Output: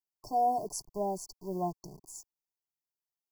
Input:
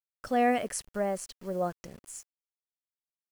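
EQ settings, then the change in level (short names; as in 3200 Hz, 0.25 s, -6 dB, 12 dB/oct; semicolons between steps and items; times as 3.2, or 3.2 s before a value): brick-wall FIR band-stop 1100–4400 Hz; bell 9100 Hz -12 dB 0.31 oct; fixed phaser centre 350 Hz, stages 8; +1.5 dB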